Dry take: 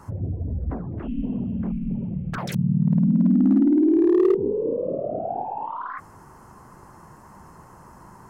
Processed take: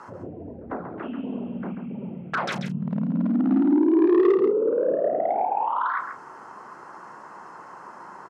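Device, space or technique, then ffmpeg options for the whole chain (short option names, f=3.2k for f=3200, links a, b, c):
intercom: -filter_complex "[0:a]asettb=1/sr,asplit=3[a][b][c];[a]atrim=end=2.954[d];[b]atrim=start=2.95:end=4.28,asetpts=PTS-STARTPTS,afade=t=in:d=0.004:c=qsin,afade=t=out:st=1.326:d=0.004:c=qsin,lowpass=f=5.2k:w=0.5412,lowpass=f=5.2k:w=1.3066[e];[c]atrim=start=4.276[f];[d][e]acrossfade=d=0.004:c1=hsin:c2=qsin[g];[g][f]acrossfade=d=0.004:c1=qsin:c2=hsin,highpass=390,lowpass=4.5k,equalizer=f=1.4k:t=o:w=0.41:g=5,aecho=1:1:137:0.398,asoftclip=type=tanh:threshold=-17dB,asplit=2[h][i];[i]adelay=34,volume=-10.5dB[j];[h][j]amix=inputs=2:normalize=0,volume=5dB"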